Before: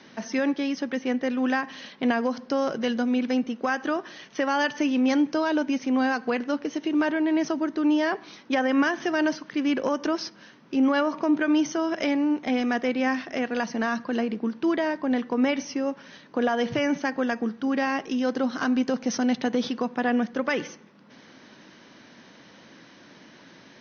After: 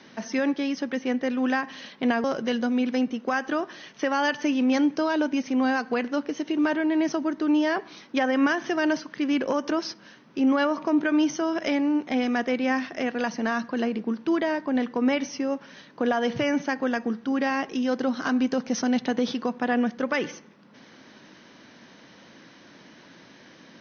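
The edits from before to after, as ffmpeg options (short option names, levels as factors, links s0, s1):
-filter_complex "[0:a]asplit=2[s0][s1];[s0]atrim=end=2.242[s2];[s1]atrim=start=2.598[s3];[s2][s3]acrossfade=d=0.004:c1=hsin:c2=hsin"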